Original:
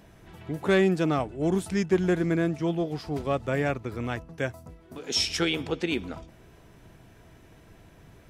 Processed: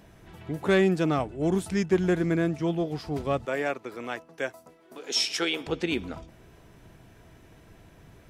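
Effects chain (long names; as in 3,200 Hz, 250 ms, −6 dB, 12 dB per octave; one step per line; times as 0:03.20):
0:03.45–0:05.67: high-pass filter 340 Hz 12 dB per octave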